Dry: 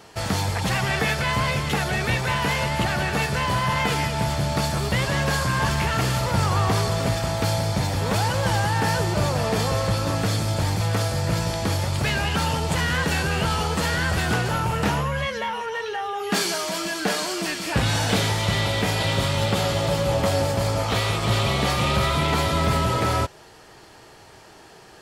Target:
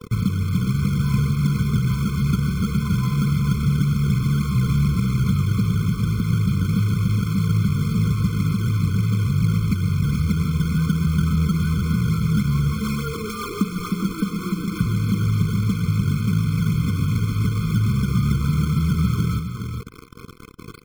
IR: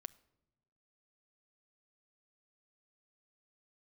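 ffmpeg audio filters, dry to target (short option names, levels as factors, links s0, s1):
-filter_complex "[0:a]lowpass=f=1800:w=0.5412,lowpass=f=1800:w=1.3066,lowshelf=f=270:t=q:w=3:g=10.5,acompressor=threshold=0.0631:ratio=5,aresample=11025,acrusher=bits=5:mix=0:aa=0.000001,aresample=44100,atempo=1.2,acrusher=samples=16:mix=1:aa=0.000001:lfo=1:lforange=25.6:lforate=3.5,aecho=1:1:414:0.447,asplit=2[s0][s1];[1:a]atrim=start_sample=2205[s2];[s1][s2]afir=irnorm=-1:irlink=0,volume=1.12[s3];[s0][s3]amix=inputs=2:normalize=0,afftfilt=real='re*eq(mod(floor(b*sr/1024/510),2),0)':imag='im*eq(mod(floor(b*sr/1024/510),2),0)':win_size=1024:overlap=0.75"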